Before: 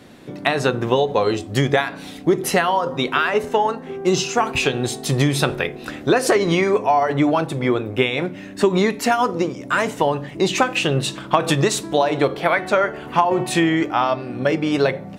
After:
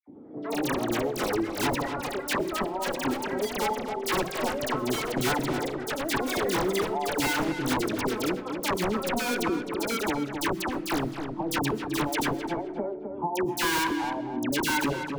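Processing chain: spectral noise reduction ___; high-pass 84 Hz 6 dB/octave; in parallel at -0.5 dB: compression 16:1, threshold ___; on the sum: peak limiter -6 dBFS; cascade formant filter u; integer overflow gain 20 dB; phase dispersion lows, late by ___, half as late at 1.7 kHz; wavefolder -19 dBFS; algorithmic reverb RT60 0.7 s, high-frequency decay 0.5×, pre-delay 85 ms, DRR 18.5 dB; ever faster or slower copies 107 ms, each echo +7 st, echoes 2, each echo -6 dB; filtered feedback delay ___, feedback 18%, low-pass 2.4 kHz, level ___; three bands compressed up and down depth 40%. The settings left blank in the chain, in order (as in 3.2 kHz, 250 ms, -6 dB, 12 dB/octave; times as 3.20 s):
11 dB, -30 dBFS, 76 ms, 259 ms, -8 dB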